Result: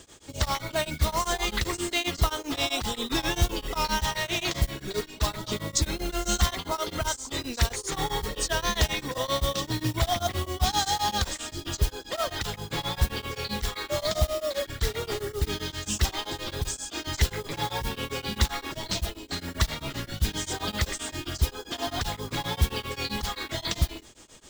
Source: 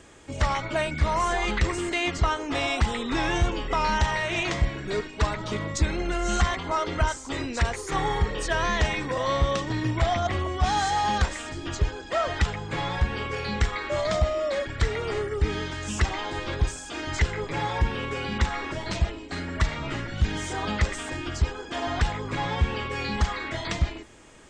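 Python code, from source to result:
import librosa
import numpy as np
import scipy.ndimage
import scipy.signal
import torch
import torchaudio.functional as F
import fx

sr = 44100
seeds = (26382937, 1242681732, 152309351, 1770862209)

y = fx.mod_noise(x, sr, seeds[0], snr_db=22)
y = fx.high_shelf_res(y, sr, hz=2900.0, db=7.0, q=1.5)
y = y * np.abs(np.cos(np.pi * 7.6 * np.arange(len(y)) / sr))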